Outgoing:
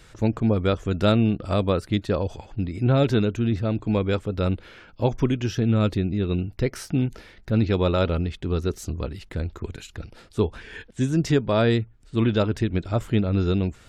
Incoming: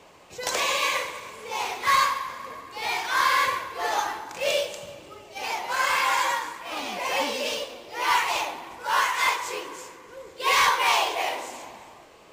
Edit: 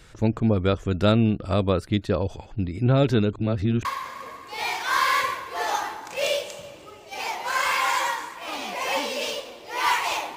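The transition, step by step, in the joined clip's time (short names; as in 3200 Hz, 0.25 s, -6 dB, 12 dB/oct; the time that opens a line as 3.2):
outgoing
3.33–3.85 reverse
3.85 switch to incoming from 2.09 s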